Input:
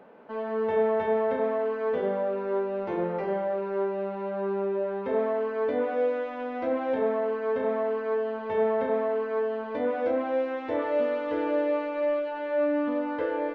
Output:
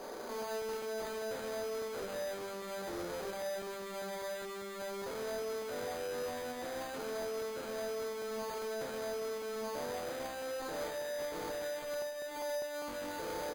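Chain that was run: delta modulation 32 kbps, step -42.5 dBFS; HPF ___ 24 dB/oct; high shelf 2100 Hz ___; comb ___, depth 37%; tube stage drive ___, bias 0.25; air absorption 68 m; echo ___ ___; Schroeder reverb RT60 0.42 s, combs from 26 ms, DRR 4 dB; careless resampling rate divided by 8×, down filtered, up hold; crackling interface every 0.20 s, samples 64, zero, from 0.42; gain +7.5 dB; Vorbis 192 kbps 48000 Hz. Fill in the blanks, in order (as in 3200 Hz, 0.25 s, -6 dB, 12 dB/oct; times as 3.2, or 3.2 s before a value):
250 Hz, -11.5 dB, 5.3 ms, 48 dB, 0.13 s, -10 dB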